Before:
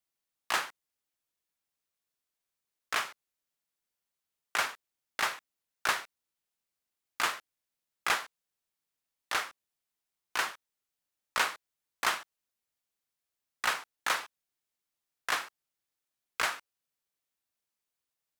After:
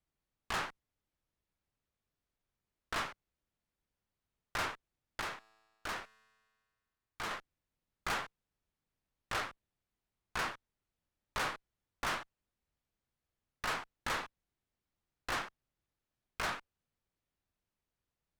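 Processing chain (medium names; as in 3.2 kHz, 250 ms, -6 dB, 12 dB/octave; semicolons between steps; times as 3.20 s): RIAA curve playback; valve stage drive 38 dB, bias 0.75; 5.21–7.31 s: feedback comb 110 Hz, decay 1.8 s, mix 40%; trim +6 dB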